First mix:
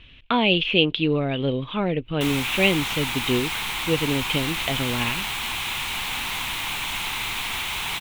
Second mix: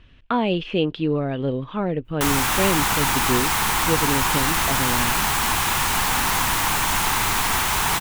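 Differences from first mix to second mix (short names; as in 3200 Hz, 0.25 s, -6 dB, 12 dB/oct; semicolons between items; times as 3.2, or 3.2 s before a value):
background +11.0 dB; master: add band shelf 2900 Hz -10.5 dB 1.1 oct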